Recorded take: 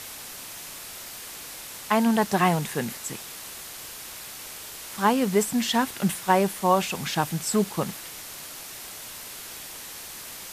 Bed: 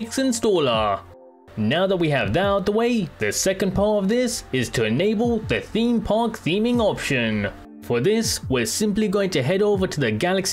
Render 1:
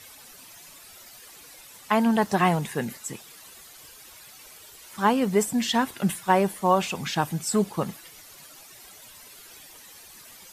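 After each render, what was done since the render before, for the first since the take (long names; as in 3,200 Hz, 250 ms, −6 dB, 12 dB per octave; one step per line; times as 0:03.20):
broadband denoise 12 dB, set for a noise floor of −40 dBFS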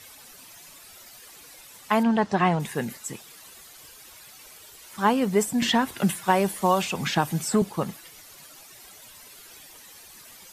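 0:02.03–0:02.60: high-frequency loss of the air 100 metres
0:05.62–0:07.62: multiband upward and downward compressor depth 70%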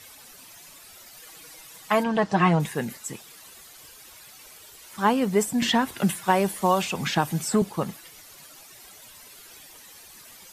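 0:01.16–0:02.69: comb filter 6.3 ms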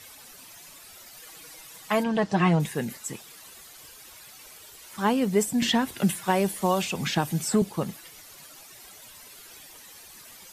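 dynamic equaliser 1,100 Hz, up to −5 dB, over −37 dBFS, Q 0.87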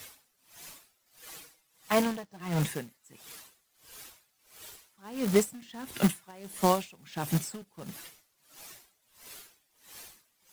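log-companded quantiser 4 bits
tremolo with a sine in dB 1.5 Hz, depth 27 dB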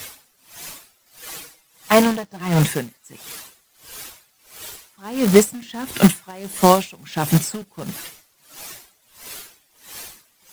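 level +12 dB
brickwall limiter −1 dBFS, peak gain reduction 1 dB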